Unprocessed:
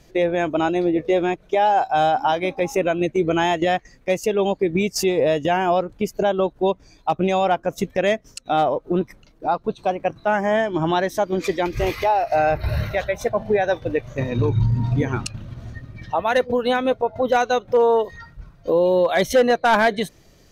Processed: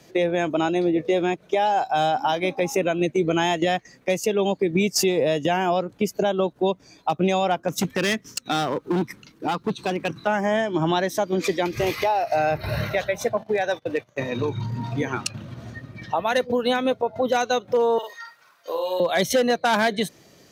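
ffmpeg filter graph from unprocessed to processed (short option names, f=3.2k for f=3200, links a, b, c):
-filter_complex "[0:a]asettb=1/sr,asplit=3[a][b][c];[a]atrim=end=7.684[d];[b]atrim=start=7.68:end=10.27,asetpts=PTS-STARTPTS,afade=t=in:d=0.004:c=qsin,afade=t=out:st=2.586:d=0.004:c=qsin,equalizer=f=640:w=1.8:g=-14,acontrast=33,volume=19dB,asoftclip=hard,volume=-19dB[e];[c]atrim=start=10.266[f];[d][e]acrossfade=d=0.004:c1=hsin:c2=qsin[g];[g][f]acrossfade=d=0.004:c1=qsin:c2=hsin,asettb=1/sr,asplit=3[h][i][j];[h]atrim=end=13.374[k];[i]atrim=start=13.37:end=15.27,asetpts=PTS-STARTPTS,afade=t=in:d=0.004:c=qsin,afade=t=out:st=1.896:d=0.004:c=qsin,agate=range=-20dB:threshold=-33dB:ratio=16:release=100:detection=peak,lowshelf=f=390:g=-8,asoftclip=type=hard:threshold=-14dB[l];[j]atrim=start=15.266[m];[k][l]acrossfade=d=0.004:c1=hsin:c2=qsin[n];[n][m]acrossfade=d=0.004:c1=qsin:c2=hsin,asettb=1/sr,asplit=3[o][p][q];[o]atrim=end=17.984[r];[p]atrim=start=17.98:end=19,asetpts=PTS-STARTPTS,afade=t=in:d=0.004:c=qsin,afade=t=out:st=1.016:d=0.004:c=qsin,highpass=1k,highshelf=f=9.1k:g=8,asplit=2[s][t];[t]adelay=49,volume=-4dB[u];[s][u]amix=inputs=2:normalize=0,atrim=end_sample=44982[v];[q]atrim=start=18.996[w];[r][v]acrossfade=d=0.004:c1=hsin:c2=qsin[x];[x][w]acrossfade=d=0.004:c1=qsin:c2=hsin,highpass=150,acrossover=split=210|3000[y][z][aa];[z]acompressor=threshold=-27dB:ratio=2[ab];[y][ab][aa]amix=inputs=3:normalize=0,volume=3dB"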